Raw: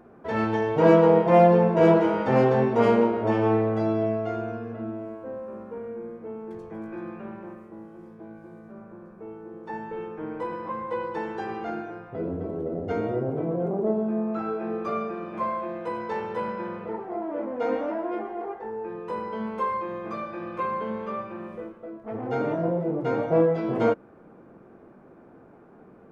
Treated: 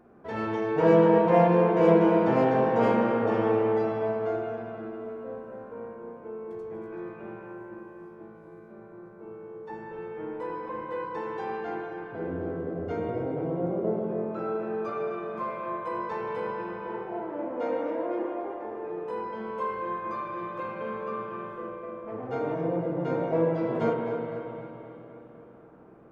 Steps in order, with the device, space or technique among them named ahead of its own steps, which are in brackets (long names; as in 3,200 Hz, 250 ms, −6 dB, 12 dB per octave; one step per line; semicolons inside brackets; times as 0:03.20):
dub delay into a spring reverb (feedback echo with a low-pass in the loop 256 ms, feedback 64%, low-pass 4,200 Hz, level −9.5 dB; spring reverb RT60 3.2 s, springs 34/48 ms, chirp 40 ms, DRR 1.5 dB)
level −5.5 dB